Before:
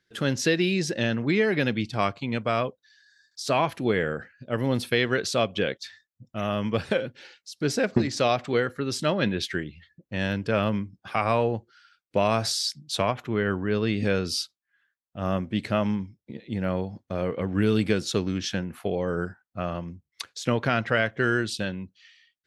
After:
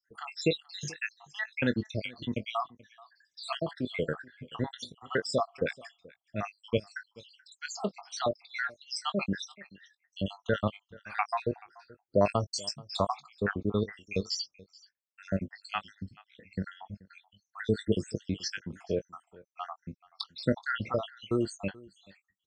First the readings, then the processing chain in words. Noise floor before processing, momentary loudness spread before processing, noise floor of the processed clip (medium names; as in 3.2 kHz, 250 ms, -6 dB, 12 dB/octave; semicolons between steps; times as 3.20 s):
-84 dBFS, 12 LU, -85 dBFS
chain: random holes in the spectrogram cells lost 78%; elliptic low-pass 8.3 kHz, stop band 40 dB; doubling 20 ms -11.5 dB; delay 431 ms -23 dB